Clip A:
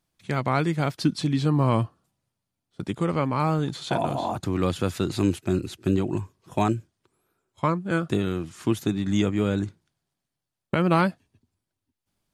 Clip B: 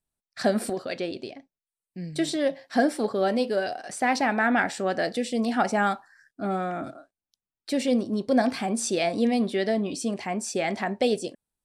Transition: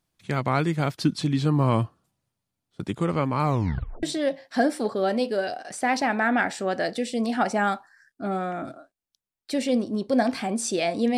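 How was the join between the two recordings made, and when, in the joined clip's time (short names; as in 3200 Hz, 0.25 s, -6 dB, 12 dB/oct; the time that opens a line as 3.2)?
clip A
3.44 tape stop 0.59 s
4.03 switch to clip B from 2.22 s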